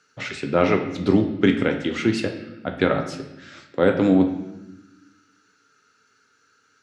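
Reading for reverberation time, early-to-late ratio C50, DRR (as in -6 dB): 0.95 s, 8.0 dB, 4.5 dB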